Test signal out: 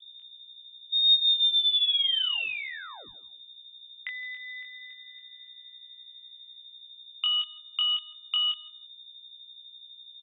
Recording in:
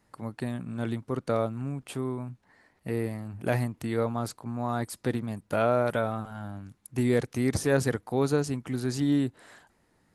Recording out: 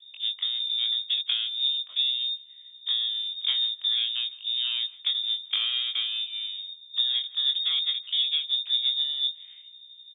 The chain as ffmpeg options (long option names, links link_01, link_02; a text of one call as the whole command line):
ffmpeg -i in.wav -filter_complex "[0:a]acompressor=threshold=-29dB:ratio=8,aeval=exprs='val(0)+0.00282*(sin(2*PI*60*n/s)+sin(2*PI*2*60*n/s)/2+sin(2*PI*3*60*n/s)/3+sin(2*PI*4*60*n/s)/4+sin(2*PI*5*60*n/s)/5)':channel_layout=same,adynamicsmooth=sensitivity=0.5:basefreq=520,crystalizer=i=4:c=0,afreqshift=-84,asplit=2[link_01][link_02];[link_02]adelay=22,volume=-4dB[link_03];[link_01][link_03]amix=inputs=2:normalize=0,lowpass=frequency=3100:width_type=q:width=0.5098,lowpass=frequency=3100:width_type=q:width=0.6013,lowpass=frequency=3100:width_type=q:width=0.9,lowpass=frequency=3100:width_type=q:width=2.563,afreqshift=-3700,asplit=2[link_04][link_05];[link_05]adelay=163,lowpass=frequency=1700:poles=1,volume=-17dB,asplit=2[link_06][link_07];[link_07]adelay=163,lowpass=frequency=1700:poles=1,volume=0.26[link_08];[link_04][link_06][link_08]amix=inputs=3:normalize=0,volume=6.5dB" out.wav